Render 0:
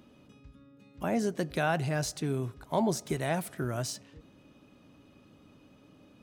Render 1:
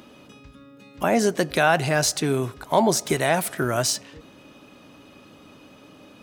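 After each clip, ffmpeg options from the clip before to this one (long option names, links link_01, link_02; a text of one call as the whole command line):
ffmpeg -i in.wav -filter_complex "[0:a]lowshelf=frequency=280:gain=-11,asplit=2[link_01][link_02];[link_02]alimiter=limit=-23.5dB:level=0:latency=1:release=148,volume=0dB[link_03];[link_01][link_03]amix=inputs=2:normalize=0,volume=8dB" out.wav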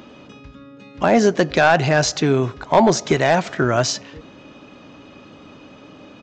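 ffmpeg -i in.wav -af "highshelf=frequency=6200:gain=-10,aresample=16000,aeval=exprs='clip(val(0),-1,0.251)':channel_layout=same,aresample=44100,volume=6dB" out.wav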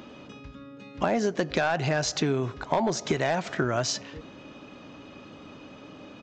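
ffmpeg -i in.wav -af "acompressor=threshold=-19dB:ratio=6,volume=-3dB" out.wav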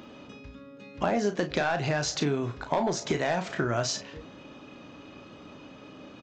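ffmpeg -i in.wav -af "aecho=1:1:34|50:0.376|0.141,volume=-2dB" out.wav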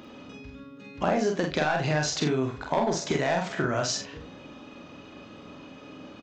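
ffmpeg -i in.wav -filter_complex "[0:a]asplit=2[link_01][link_02];[link_02]adelay=46,volume=-3.5dB[link_03];[link_01][link_03]amix=inputs=2:normalize=0" out.wav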